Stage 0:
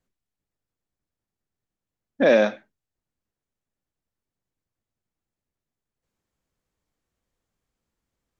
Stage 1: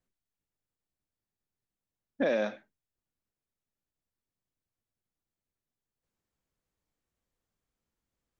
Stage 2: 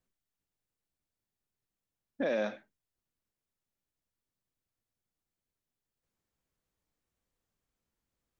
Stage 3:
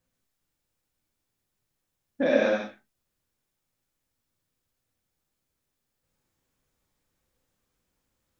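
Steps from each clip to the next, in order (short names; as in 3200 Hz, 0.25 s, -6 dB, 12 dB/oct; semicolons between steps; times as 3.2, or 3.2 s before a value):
compressor, threshold -19 dBFS, peak gain reduction 7 dB; gain -5.5 dB
limiter -22.5 dBFS, peak gain reduction 5.5 dB
non-linear reverb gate 0.2 s flat, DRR -2.5 dB; gain +4.5 dB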